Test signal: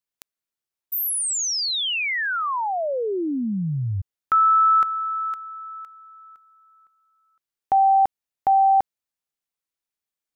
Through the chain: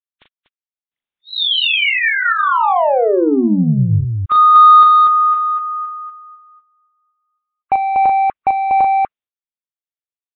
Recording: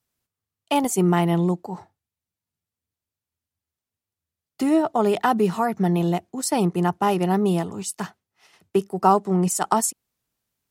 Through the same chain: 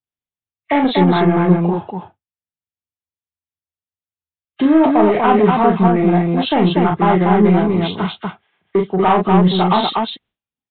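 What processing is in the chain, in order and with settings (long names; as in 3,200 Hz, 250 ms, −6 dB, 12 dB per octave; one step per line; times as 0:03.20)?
hearing-aid frequency compression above 1,100 Hz 1.5 to 1
downward expander −42 dBFS, range −18 dB
in parallel at +1 dB: brickwall limiter −14.5 dBFS
on the sum: soft clipping −10.5 dBFS
on a send: loudspeakers that aren't time-aligned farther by 13 metres −5 dB, 83 metres −3 dB
on the sum: noise reduction from a noise print of the clip's start 8 dB
downsampling to 8,000 Hz
level +3 dB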